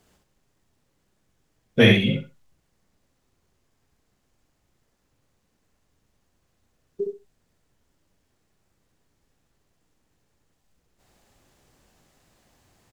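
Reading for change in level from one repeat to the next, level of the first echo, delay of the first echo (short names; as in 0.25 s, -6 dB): -15.0 dB, -4.0 dB, 65 ms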